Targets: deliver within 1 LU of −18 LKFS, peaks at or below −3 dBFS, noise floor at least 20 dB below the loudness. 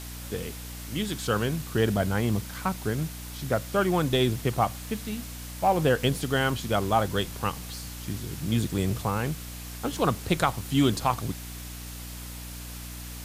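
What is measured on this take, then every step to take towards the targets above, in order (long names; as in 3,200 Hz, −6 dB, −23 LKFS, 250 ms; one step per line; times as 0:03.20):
mains hum 60 Hz; hum harmonics up to 300 Hz; level of the hum −39 dBFS; background noise floor −39 dBFS; target noise floor −48 dBFS; integrated loudness −28.0 LKFS; sample peak −9.0 dBFS; target loudness −18.0 LKFS
→ hum removal 60 Hz, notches 5
broadband denoise 9 dB, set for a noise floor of −39 dBFS
level +10 dB
brickwall limiter −3 dBFS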